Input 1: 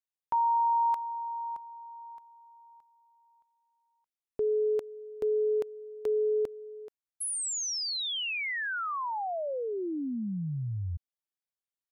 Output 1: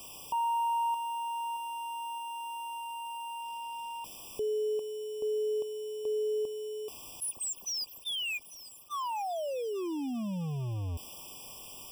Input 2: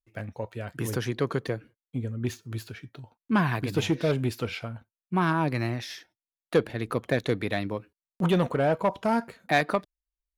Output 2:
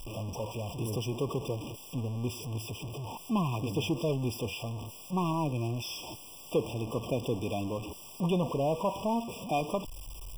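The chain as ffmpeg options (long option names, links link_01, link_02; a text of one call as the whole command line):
ffmpeg -i in.wav -af "aeval=exprs='val(0)+0.5*0.0473*sgn(val(0))':channel_layout=same,afftfilt=real='re*eq(mod(floor(b*sr/1024/1200),2),0)':imag='im*eq(mod(floor(b*sr/1024/1200),2),0)':win_size=1024:overlap=0.75,volume=-7dB" out.wav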